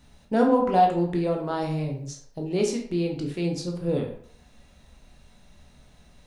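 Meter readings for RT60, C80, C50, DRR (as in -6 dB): 0.60 s, 10.5 dB, 6.5 dB, 0.5 dB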